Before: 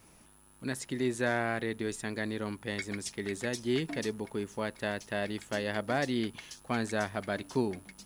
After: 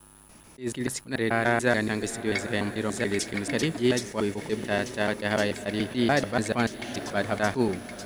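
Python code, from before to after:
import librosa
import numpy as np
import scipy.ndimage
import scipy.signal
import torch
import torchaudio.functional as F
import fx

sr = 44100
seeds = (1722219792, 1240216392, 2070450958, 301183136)

y = fx.block_reorder(x, sr, ms=145.0, group=4)
y = fx.echo_diffused(y, sr, ms=912, feedback_pct=44, wet_db=-13)
y = fx.attack_slew(y, sr, db_per_s=240.0)
y = F.gain(torch.from_numpy(y), 7.5).numpy()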